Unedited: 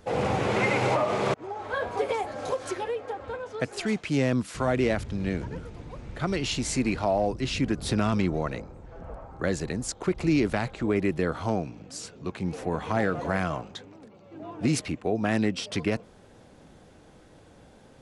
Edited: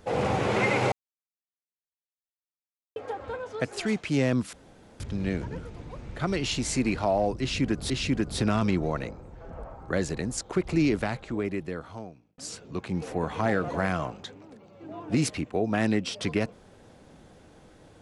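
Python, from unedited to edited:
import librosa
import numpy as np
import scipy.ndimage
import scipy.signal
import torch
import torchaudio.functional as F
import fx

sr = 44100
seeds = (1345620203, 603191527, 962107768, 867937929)

y = fx.edit(x, sr, fx.silence(start_s=0.92, length_s=2.04),
    fx.room_tone_fill(start_s=4.53, length_s=0.47),
    fx.repeat(start_s=7.41, length_s=0.49, count=2),
    fx.fade_out_span(start_s=10.27, length_s=1.62), tone=tone)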